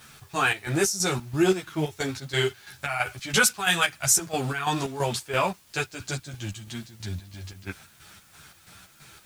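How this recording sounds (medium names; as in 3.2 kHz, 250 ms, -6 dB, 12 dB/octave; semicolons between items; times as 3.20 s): chopped level 3 Hz, depth 65%, duty 55%; a quantiser's noise floor 10-bit, dither triangular; a shimmering, thickened sound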